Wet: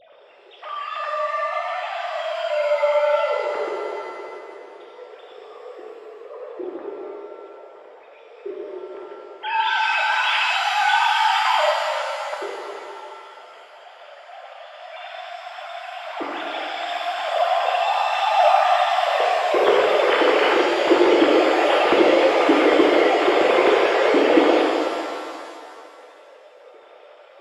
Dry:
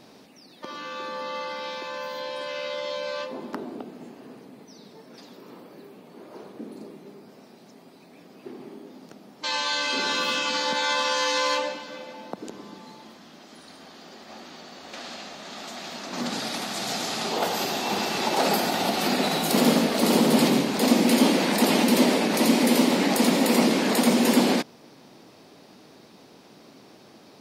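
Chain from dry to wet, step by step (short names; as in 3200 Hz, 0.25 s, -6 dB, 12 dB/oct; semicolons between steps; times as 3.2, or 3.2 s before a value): sine-wave speech; 19.84–20.55 tilt +2.5 dB/oct; shimmer reverb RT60 2.3 s, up +7 st, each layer -8 dB, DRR -2.5 dB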